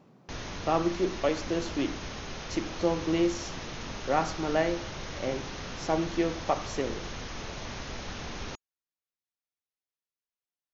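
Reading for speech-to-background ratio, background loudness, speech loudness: 8.0 dB, −39.0 LKFS, −31.0 LKFS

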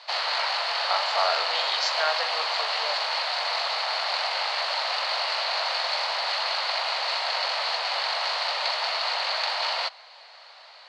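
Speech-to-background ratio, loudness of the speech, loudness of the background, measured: −4.5 dB, −30.0 LKFS, −25.5 LKFS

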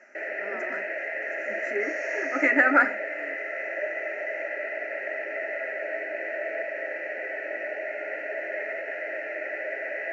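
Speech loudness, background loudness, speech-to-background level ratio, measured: −24.0 LKFS, −31.0 LKFS, 7.0 dB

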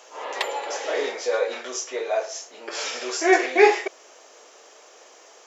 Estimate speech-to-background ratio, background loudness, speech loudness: 7.0 dB, −30.5 LKFS, −23.5 LKFS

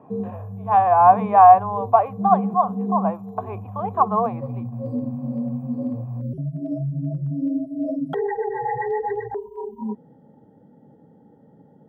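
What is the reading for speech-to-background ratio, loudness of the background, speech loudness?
11.0 dB, −28.5 LKFS, −17.5 LKFS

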